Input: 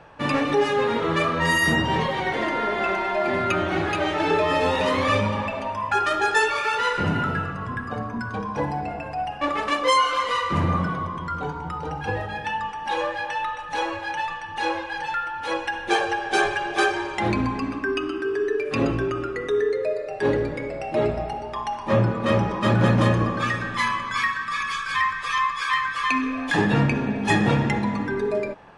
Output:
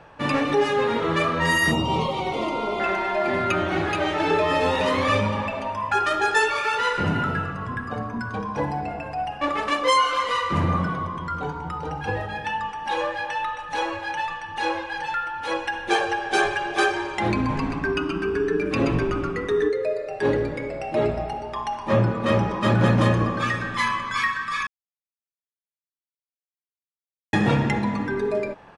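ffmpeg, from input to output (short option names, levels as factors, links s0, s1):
-filter_complex "[0:a]asettb=1/sr,asplit=3[s0][s1][s2];[s0]atrim=end=1.714[s3];[s1]atrim=start=1.71:end=2.8,asetpts=PTS-STARTPTS,afade=t=in:d=0.004:c=qsin,afade=t=out:st=1.086:d=0.004:c=qsin,asuperstop=centerf=1700:order=4:qfactor=1.8[s4];[s2]atrim=start=2.796[s5];[s3][s4]acrossfade=d=0.004:c1=hsin:c2=qsin[s6];[s6][s5]acrossfade=d=0.004:c1=qsin:c2=hsin,asplit=3[s7][s8][s9];[s7]afade=t=out:st=17.48:d=0.02[s10];[s8]asplit=8[s11][s12][s13][s14][s15][s16][s17][s18];[s12]adelay=130,afreqshift=-110,volume=0.447[s19];[s13]adelay=260,afreqshift=-220,volume=0.24[s20];[s14]adelay=390,afreqshift=-330,volume=0.13[s21];[s15]adelay=520,afreqshift=-440,volume=0.07[s22];[s16]adelay=650,afreqshift=-550,volume=0.038[s23];[s17]adelay=780,afreqshift=-660,volume=0.0204[s24];[s18]adelay=910,afreqshift=-770,volume=0.0111[s25];[s11][s19][s20][s21][s22][s23][s24][s25]amix=inputs=8:normalize=0,afade=t=in:st=17.48:d=0.02,afade=t=out:st=19.68:d=0.02[s26];[s9]afade=t=in:st=19.68:d=0.02[s27];[s10][s26][s27]amix=inputs=3:normalize=0,asplit=3[s28][s29][s30];[s28]atrim=end=24.67,asetpts=PTS-STARTPTS,afade=t=out:st=24.666:d=0.004:c=hsin[s31];[s29]atrim=start=24.67:end=27.33,asetpts=PTS-STARTPTS,volume=0[s32];[s30]atrim=start=27.33,asetpts=PTS-STARTPTS,afade=t=in:d=0.004:c=hsin[s33];[s31][s32][s33]concat=n=3:v=0:a=1"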